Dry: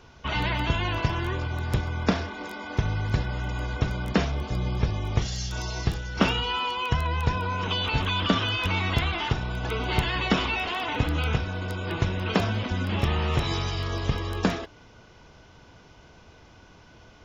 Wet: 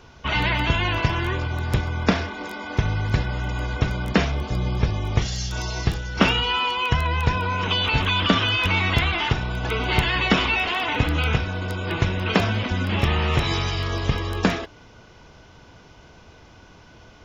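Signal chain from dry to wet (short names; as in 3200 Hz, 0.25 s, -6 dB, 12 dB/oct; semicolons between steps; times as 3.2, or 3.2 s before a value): dynamic EQ 2200 Hz, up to +4 dB, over -40 dBFS, Q 1.3; gain +3.5 dB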